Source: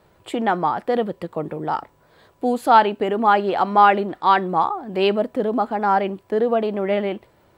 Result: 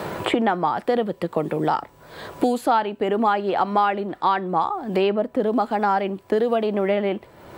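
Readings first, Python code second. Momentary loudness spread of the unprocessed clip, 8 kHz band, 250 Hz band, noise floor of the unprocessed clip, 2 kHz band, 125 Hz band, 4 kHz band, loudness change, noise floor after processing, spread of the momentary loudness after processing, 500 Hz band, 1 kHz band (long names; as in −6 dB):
12 LU, can't be measured, +0.5 dB, −58 dBFS, −3.5 dB, +0.5 dB, −2.0 dB, −2.0 dB, −51 dBFS, 5 LU, −1.0 dB, −4.0 dB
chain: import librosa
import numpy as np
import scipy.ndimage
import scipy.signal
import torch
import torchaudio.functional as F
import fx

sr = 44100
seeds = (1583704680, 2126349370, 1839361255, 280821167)

y = fx.band_squash(x, sr, depth_pct=100)
y = y * librosa.db_to_amplitude(-2.0)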